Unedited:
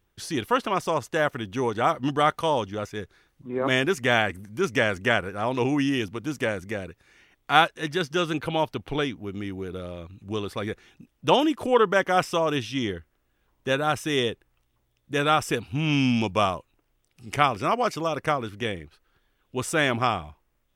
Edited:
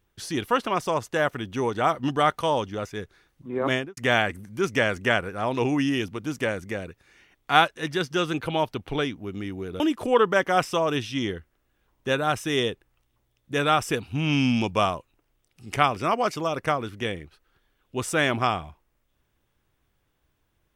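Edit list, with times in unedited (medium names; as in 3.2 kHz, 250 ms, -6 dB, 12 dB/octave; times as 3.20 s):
3.67–3.97 s: studio fade out
9.80–11.40 s: delete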